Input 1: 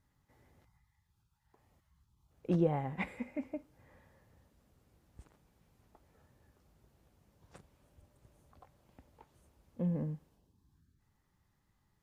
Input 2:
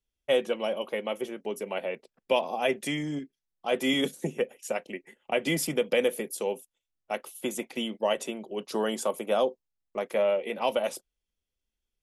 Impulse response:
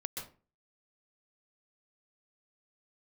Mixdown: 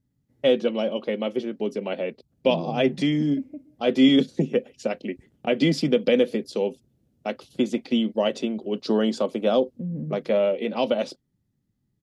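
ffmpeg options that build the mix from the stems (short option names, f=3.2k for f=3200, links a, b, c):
-filter_complex "[0:a]alimiter=level_in=6dB:limit=-24dB:level=0:latency=1,volume=-6dB,volume=-6.5dB,asplit=2[a][b];[b]volume=-16.5dB[c];[1:a]agate=range=-17dB:threshold=-46dB:ratio=16:detection=peak,lowpass=f=4.5k:t=q:w=3.5,equalizer=f=1.1k:t=o:w=1.6:g=10.5,adelay=150,volume=-2dB[d];[2:a]atrim=start_sample=2205[e];[c][e]afir=irnorm=-1:irlink=0[f];[a][d][f]amix=inputs=3:normalize=0,equalizer=f=125:t=o:w=1:g=9,equalizer=f=250:t=o:w=1:g=12,equalizer=f=500:t=o:w=1:g=3,equalizer=f=1k:t=o:w=1:g=-11,equalizer=f=2k:t=o:w=1:g=-3"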